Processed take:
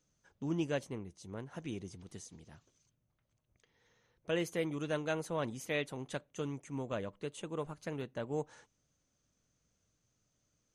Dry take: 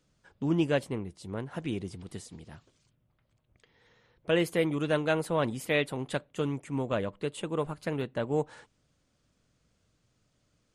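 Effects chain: bell 6200 Hz +14 dB 0.2 oct; gain -8 dB

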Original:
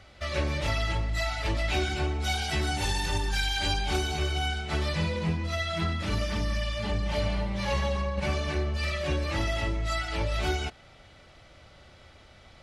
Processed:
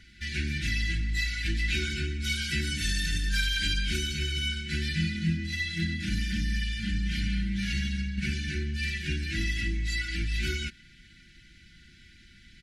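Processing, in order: brick-wall FIR band-stop 360–1400 Hz; comb 5 ms, depth 49%

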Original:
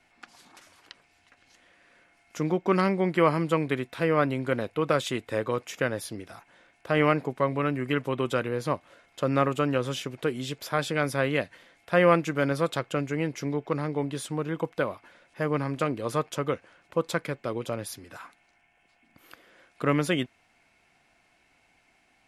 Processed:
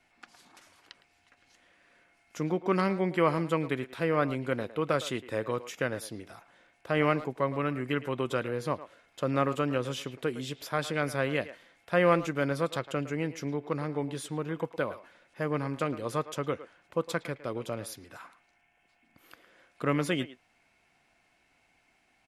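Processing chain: speakerphone echo 0.11 s, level -14 dB; gain -3.5 dB

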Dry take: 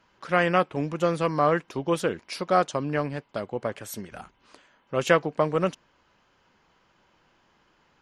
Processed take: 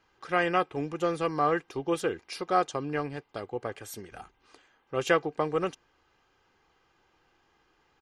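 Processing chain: comb 2.5 ms, depth 49%; gain -4.5 dB

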